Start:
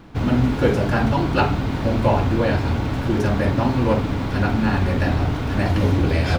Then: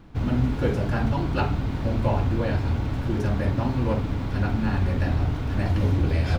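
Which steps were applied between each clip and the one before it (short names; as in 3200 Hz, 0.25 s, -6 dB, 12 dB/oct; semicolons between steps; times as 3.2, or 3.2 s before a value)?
low shelf 120 Hz +9 dB; gain -8 dB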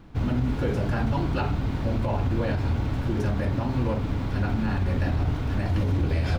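limiter -16.5 dBFS, peak gain reduction 6.5 dB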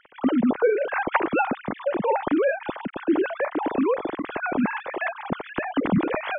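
sine-wave speech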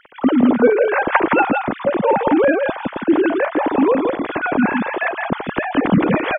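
echo 0.166 s -5 dB; gain +6.5 dB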